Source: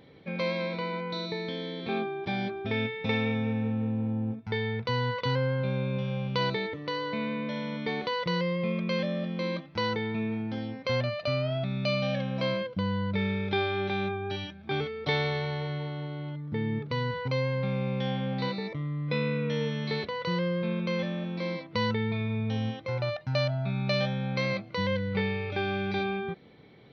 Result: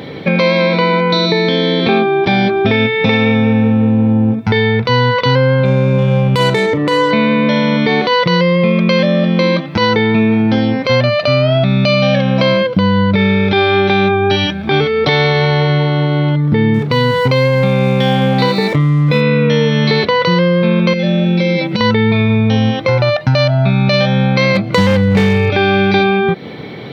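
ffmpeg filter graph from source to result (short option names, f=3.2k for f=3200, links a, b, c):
-filter_complex "[0:a]asettb=1/sr,asplit=3[a][b][c];[a]atrim=end=5.654[d];[b]atrim=start=5.65:end=7.11,asetpts=PTS-STARTPTS,afade=t=in:d=0.004:c=qsin,afade=t=out:st=1.456:d=0.004:c=qsin,adynamicsmooth=sensitivity=4.5:basefreq=1.9k,asplit=2[e][f];[f]adelay=38,volume=-13dB[g];[e][g]amix=inputs=2:normalize=0,atrim=end_sample=64386[h];[c]atrim=start=7.106[i];[d][h]acrossfade=d=0.004:c1=hsin:c2=qsin[j];[j][i]acrossfade=d=0.004:c1=qsin:c2=hsin,asettb=1/sr,asplit=3[k][l][m];[k]atrim=end=16.744[n];[l]atrim=start=16.74:end=19.21,asetpts=PTS-STARTPTS,afade=t=in:d=0.004:c=qsin,afade=t=out:st=2.466:d=0.004:c=qsin,aeval=exprs='sgn(val(0))*max(abs(val(0))-0.002,0)':c=same,asplit=2[o][p];[p]adelay=28,volume=-13dB[q];[o][q]amix=inputs=2:normalize=0,atrim=end_sample=108927[r];[m]atrim=start=19.206[s];[n][r]acrossfade=d=0.004:c1=hsin:c2=qsin[t];[t][s]acrossfade=d=0.004:c1=qsin:c2=hsin,asettb=1/sr,asplit=3[u][v][w];[u]atrim=end=20.934[x];[v]atrim=start=20.93:end=21.81,asetpts=PTS-STARTPTS,afade=t=in:d=0.004:c=qsin,afade=t=out:st=0.876:d=0.004:c=qsin,acompressor=threshold=-36dB:ratio=12:attack=3.2:release=140:knee=1:detection=peak,equalizer=f=1.1k:w=3.7:g=-14.5,aecho=1:1:5.3:0.93,atrim=end_sample=38808[y];[w]atrim=start=21.806[z];[x][y]acrossfade=d=0.004:c1=hsin:c2=qsin[aa];[aa][z]acrossfade=d=0.004:c1=qsin:c2=hsin,asettb=1/sr,asplit=3[ab][ac][ad];[ab]atrim=end=24.554[ae];[ac]atrim=start=24.55:end=25.5,asetpts=PTS-STARTPTS,afade=t=in:d=0.004:c=qsin,afade=t=out:st=0.946:d=0.004:c=qsin,asoftclip=type=hard:threshold=-26.5dB,lowshelf=f=250:g=8[af];[ad]atrim=start=25.496[ag];[ae][af]acrossfade=d=0.004:c1=hsin:c2=qsin[ah];[ah][ag]acrossfade=d=0.004:c1=qsin:c2=hsin,highpass=98,acompressor=threshold=-37dB:ratio=4,alimiter=level_in=28dB:limit=-1dB:release=50:level=0:latency=1,volume=-1dB"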